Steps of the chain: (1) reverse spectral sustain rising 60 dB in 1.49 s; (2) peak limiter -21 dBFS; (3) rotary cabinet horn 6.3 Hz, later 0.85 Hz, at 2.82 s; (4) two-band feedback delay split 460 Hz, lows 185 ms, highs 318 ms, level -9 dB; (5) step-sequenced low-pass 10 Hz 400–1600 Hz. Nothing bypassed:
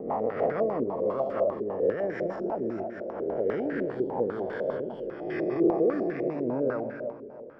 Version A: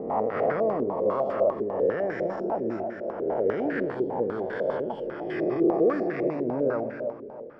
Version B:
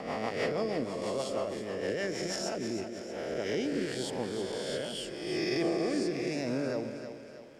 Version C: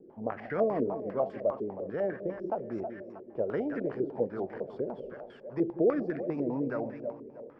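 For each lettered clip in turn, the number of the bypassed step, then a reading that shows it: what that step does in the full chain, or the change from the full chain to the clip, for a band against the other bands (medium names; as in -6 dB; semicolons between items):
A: 3, 1 kHz band +2.0 dB; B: 5, 2 kHz band +6.5 dB; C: 1, 125 Hz band +3.0 dB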